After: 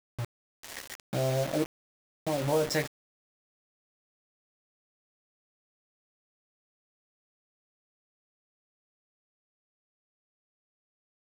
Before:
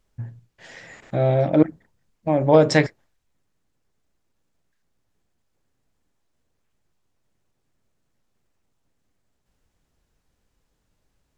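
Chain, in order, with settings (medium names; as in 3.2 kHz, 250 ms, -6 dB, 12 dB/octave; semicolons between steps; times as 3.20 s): treble shelf 7.5 kHz +11 dB; doubling 15 ms -6 dB; compression 2:1, threshold -36 dBFS, peak gain reduction 14.5 dB; spectral noise reduction 22 dB; word length cut 6-bit, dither none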